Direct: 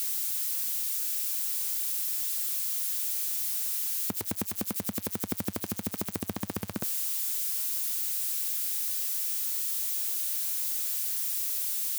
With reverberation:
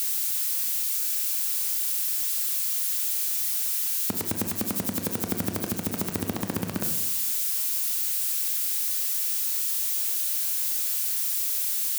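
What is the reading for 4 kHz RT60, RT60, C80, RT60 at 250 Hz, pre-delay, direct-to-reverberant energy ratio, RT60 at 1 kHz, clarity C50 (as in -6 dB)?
0.55 s, 0.90 s, 10.0 dB, 1.1 s, 23 ms, 4.5 dB, 0.85 s, 8.0 dB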